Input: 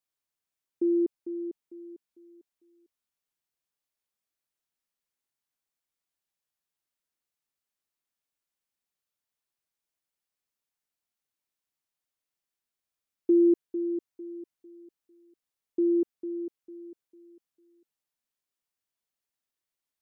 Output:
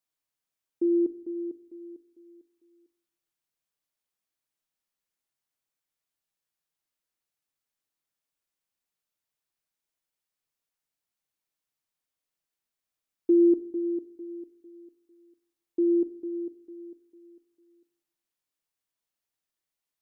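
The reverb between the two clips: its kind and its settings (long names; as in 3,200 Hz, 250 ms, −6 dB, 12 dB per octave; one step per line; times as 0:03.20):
rectangular room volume 710 cubic metres, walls furnished, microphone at 0.58 metres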